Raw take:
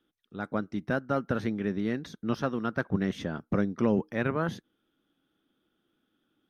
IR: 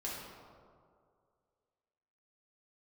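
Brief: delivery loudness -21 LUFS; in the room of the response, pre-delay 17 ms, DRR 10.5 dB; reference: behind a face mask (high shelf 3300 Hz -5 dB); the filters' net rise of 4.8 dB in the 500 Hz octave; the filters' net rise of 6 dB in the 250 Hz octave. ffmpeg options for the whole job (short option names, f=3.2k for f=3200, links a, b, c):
-filter_complex "[0:a]equalizer=f=250:t=o:g=6.5,equalizer=f=500:t=o:g=4,asplit=2[a][b];[1:a]atrim=start_sample=2205,adelay=17[c];[b][c]afir=irnorm=-1:irlink=0,volume=-12dB[d];[a][d]amix=inputs=2:normalize=0,highshelf=f=3.3k:g=-5,volume=4.5dB"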